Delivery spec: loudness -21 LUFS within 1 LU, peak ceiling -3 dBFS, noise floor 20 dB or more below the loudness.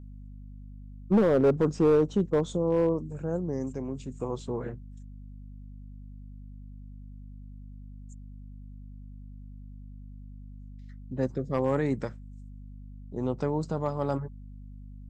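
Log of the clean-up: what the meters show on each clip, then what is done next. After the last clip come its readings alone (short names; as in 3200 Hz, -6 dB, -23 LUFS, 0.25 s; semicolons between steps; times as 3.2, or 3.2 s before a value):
clipped 0.6%; flat tops at -16.5 dBFS; hum 50 Hz; harmonics up to 250 Hz; hum level -41 dBFS; loudness -28.0 LUFS; peak -16.5 dBFS; loudness target -21.0 LUFS
-> clip repair -16.5 dBFS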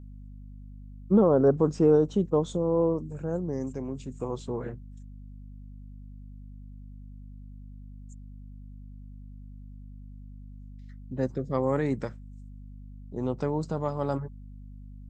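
clipped 0.0%; hum 50 Hz; harmonics up to 500 Hz; hum level -41 dBFS
-> notches 50/100/150/200/250/300 Hz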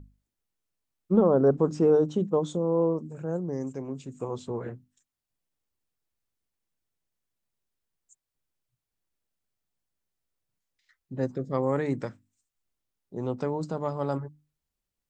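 hum none; loudness -27.5 LUFS; peak -8.5 dBFS; loudness target -21.0 LUFS
-> gain +6.5 dB; limiter -3 dBFS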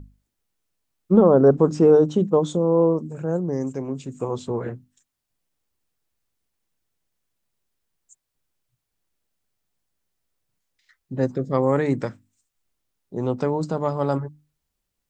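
loudness -21.0 LUFS; peak -3.0 dBFS; noise floor -80 dBFS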